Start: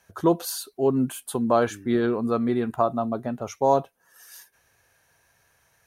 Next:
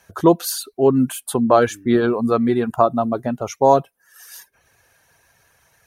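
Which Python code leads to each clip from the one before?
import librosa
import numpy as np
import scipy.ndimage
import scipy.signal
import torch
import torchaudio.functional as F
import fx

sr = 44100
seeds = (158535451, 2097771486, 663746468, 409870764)

y = fx.dereverb_blind(x, sr, rt60_s=0.52)
y = y * 10.0 ** (7.0 / 20.0)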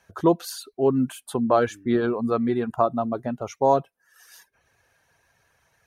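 y = fx.high_shelf(x, sr, hz=8000.0, db=-10.5)
y = y * 10.0 ** (-5.5 / 20.0)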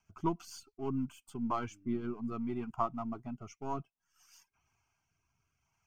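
y = np.where(x < 0.0, 10.0 ** (-3.0 / 20.0) * x, x)
y = fx.rotary_switch(y, sr, hz=6.7, then_hz=0.6, switch_at_s=0.82)
y = fx.fixed_phaser(y, sr, hz=2600.0, stages=8)
y = y * 10.0 ** (-6.0 / 20.0)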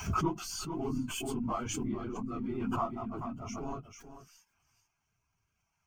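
y = fx.phase_scramble(x, sr, seeds[0], window_ms=50)
y = y + 10.0 ** (-12.5 / 20.0) * np.pad(y, (int(439 * sr / 1000.0), 0))[:len(y)]
y = fx.pre_swell(y, sr, db_per_s=20.0)
y = y * 10.0 ** (-1.5 / 20.0)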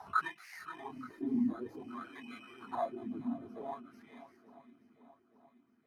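y = fx.bit_reversed(x, sr, seeds[1], block=16)
y = fx.wah_lfo(y, sr, hz=0.54, low_hz=250.0, high_hz=2200.0, q=5.2)
y = fx.echo_swing(y, sr, ms=875, ratio=1.5, feedback_pct=45, wet_db=-16.5)
y = y * 10.0 ** (7.0 / 20.0)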